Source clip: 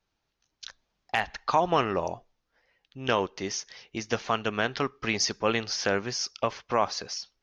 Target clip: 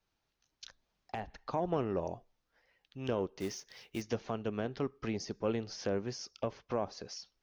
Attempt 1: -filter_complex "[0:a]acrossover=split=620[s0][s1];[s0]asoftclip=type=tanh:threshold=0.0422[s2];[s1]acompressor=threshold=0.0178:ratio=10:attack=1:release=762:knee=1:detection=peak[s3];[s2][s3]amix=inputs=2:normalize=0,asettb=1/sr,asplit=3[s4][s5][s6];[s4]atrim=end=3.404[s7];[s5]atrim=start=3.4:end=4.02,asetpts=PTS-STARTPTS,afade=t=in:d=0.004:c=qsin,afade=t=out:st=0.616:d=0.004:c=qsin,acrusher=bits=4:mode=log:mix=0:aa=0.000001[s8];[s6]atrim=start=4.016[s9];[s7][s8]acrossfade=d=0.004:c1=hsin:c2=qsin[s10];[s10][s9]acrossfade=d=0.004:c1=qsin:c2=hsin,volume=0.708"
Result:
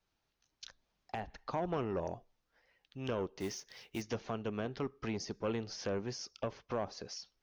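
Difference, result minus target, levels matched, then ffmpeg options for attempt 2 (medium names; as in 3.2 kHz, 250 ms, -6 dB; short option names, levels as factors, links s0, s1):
saturation: distortion +12 dB
-filter_complex "[0:a]acrossover=split=620[s0][s1];[s0]asoftclip=type=tanh:threshold=0.119[s2];[s1]acompressor=threshold=0.0178:ratio=10:attack=1:release=762:knee=1:detection=peak[s3];[s2][s3]amix=inputs=2:normalize=0,asettb=1/sr,asplit=3[s4][s5][s6];[s4]atrim=end=3.404[s7];[s5]atrim=start=3.4:end=4.02,asetpts=PTS-STARTPTS,afade=t=in:d=0.004:c=qsin,afade=t=out:st=0.616:d=0.004:c=qsin,acrusher=bits=4:mode=log:mix=0:aa=0.000001[s8];[s6]atrim=start=4.016[s9];[s7][s8]acrossfade=d=0.004:c1=hsin:c2=qsin[s10];[s10][s9]acrossfade=d=0.004:c1=qsin:c2=hsin,volume=0.708"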